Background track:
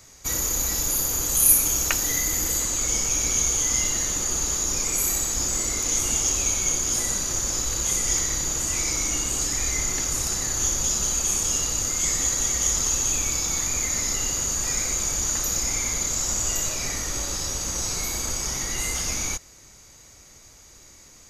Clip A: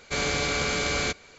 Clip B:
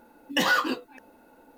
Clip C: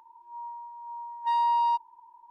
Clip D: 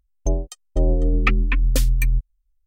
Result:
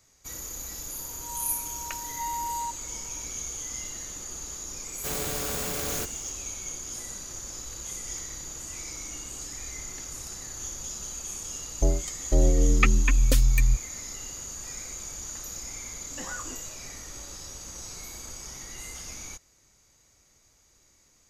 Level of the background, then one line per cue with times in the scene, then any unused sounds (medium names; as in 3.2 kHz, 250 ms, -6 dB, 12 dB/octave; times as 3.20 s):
background track -13 dB
0.94 s: add C -2 dB + peak limiter -27 dBFS
4.93 s: add A -5 dB + sampling jitter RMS 0.13 ms
11.56 s: add D -2 dB
15.81 s: add B -15.5 dB + low-pass 2.1 kHz